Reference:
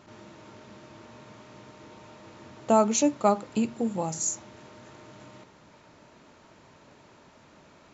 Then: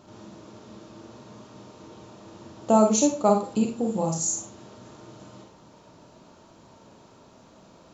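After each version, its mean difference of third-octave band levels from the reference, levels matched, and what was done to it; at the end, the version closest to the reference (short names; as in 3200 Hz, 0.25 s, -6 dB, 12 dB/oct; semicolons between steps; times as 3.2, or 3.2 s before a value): 2.5 dB: bell 2000 Hz -10.5 dB 1 oct; Schroeder reverb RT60 0.31 s, combs from 33 ms, DRR 2.5 dB; gain +2 dB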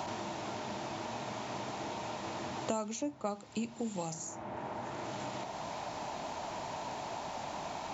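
13.0 dB: band noise 600–1000 Hz -51 dBFS; three-band squash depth 100%; gain -1.5 dB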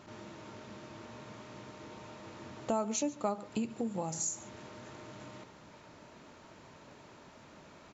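7.0 dB: compressor 2.5:1, threshold -35 dBFS, peak gain reduction 13 dB; echo 0.141 s -19.5 dB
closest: first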